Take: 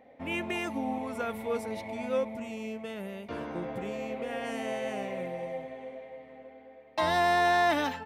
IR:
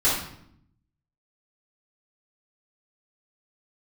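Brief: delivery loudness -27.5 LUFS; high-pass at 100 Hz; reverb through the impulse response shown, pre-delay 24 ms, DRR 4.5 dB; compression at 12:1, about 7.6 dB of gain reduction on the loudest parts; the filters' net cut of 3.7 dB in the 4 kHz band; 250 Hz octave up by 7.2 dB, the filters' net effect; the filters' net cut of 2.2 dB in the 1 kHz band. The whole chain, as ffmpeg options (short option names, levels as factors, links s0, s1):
-filter_complex "[0:a]highpass=100,equalizer=f=250:t=o:g=9,equalizer=f=1000:t=o:g=-4.5,equalizer=f=4000:t=o:g=-4.5,acompressor=threshold=0.0355:ratio=12,asplit=2[s0][s1];[1:a]atrim=start_sample=2205,adelay=24[s2];[s1][s2]afir=irnorm=-1:irlink=0,volume=0.106[s3];[s0][s3]amix=inputs=2:normalize=0,volume=2"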